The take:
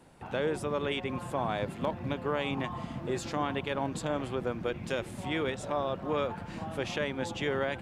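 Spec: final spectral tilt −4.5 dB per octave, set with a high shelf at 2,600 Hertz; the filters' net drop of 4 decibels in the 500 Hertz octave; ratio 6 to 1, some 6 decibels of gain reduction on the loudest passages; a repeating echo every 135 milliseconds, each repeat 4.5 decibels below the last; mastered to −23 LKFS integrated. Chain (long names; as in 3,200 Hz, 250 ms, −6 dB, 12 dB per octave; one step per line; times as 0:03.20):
parametric band 500 Hz −5 dB
high-shelf EQ 2,600 Hz +4 dB
downward compressor 6 to 1, threshold −34 dBFS
repeating echo 135 ms, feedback 60%, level −4.5 dB
level +14.5 dB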